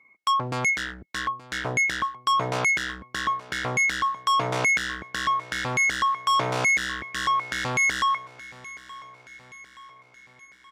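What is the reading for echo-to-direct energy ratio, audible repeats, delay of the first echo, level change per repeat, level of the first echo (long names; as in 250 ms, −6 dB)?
−17.5 dB, 4, 874 ms, −5.0 dB, −19.0 dB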